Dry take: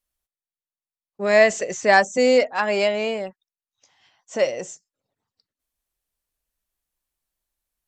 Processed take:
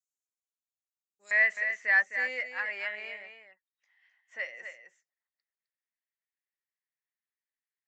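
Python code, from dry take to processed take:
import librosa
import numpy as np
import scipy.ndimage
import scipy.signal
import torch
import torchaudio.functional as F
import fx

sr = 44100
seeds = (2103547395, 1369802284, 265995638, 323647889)

y = fx.bandpass_q(x, sr, hz=fx.steps((0.0, 6900.0), (1.31, 1900.0)), q=6.6)
y = y + 10.0 ** (-8.0 / 20.0) * np.pad(y, (int(259 * sr / 1000.0), 0))[:len(y)]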